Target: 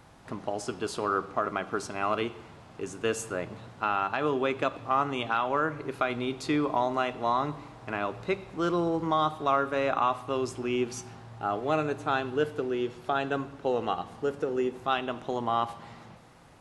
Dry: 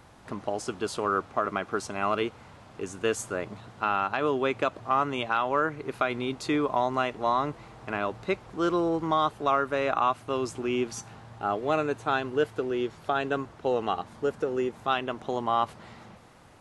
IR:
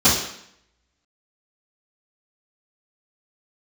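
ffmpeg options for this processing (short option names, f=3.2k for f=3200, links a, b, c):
-filter_complex "[0:a]asplit=2[a][b];[1:a]atrim=start_sample=2205,asetrate=33075,aresample=44100[c];[b][c]afir=irnorm=-1:irlink=0,volume=-35.5dB[d];[a][d]amix=inputs=2:normalize=0,volume=-1.5dB"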